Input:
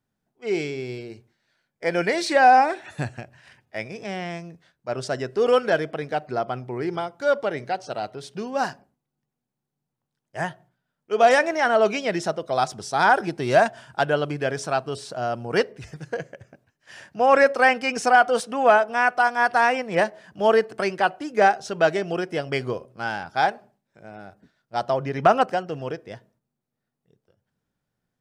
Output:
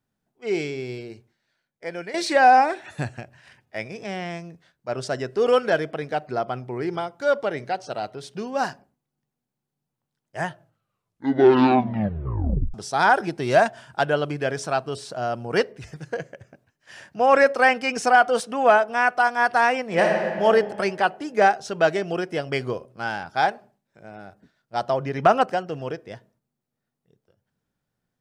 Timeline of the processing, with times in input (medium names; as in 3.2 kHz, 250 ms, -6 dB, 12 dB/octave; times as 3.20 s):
1.07–2.14 s: fade out, to -14 dB
10.47 s: tape stop 2.27 s
19.84–20.44 s: reverb throw, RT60 1.9 s, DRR -0.5 dB